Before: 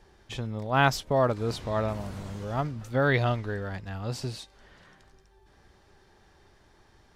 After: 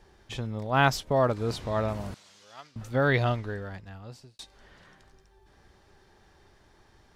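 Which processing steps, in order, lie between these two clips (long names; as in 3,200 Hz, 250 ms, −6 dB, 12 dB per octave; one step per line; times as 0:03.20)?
0:02.14–0:02.76: resonant band-pass 4,900 Hz, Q 1.1
0:03.28–0:04.39: fade out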